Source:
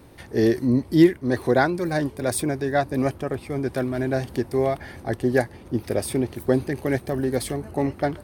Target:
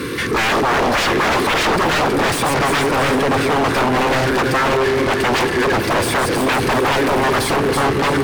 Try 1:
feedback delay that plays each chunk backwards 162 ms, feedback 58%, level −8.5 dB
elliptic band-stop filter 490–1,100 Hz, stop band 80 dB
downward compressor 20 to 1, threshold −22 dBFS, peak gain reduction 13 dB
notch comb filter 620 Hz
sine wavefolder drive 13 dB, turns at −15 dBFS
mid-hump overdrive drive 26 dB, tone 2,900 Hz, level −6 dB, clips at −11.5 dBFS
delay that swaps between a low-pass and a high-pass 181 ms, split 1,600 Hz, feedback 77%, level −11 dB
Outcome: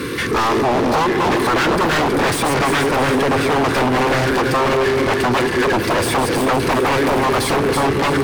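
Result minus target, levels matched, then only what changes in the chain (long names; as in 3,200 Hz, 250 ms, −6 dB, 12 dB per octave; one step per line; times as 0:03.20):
downward compressor: peak gain reduction +13 dB
remove: downward compressor 20 to 1, threshold −22 dBFS, peak gain reduction 13 dB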